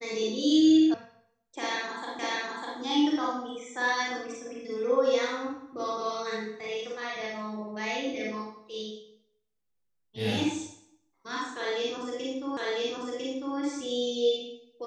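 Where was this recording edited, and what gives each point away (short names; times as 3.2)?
0.94 sound cut off
2.19 repeat of the last 0.6 s
12.57 repeat of the last 1 s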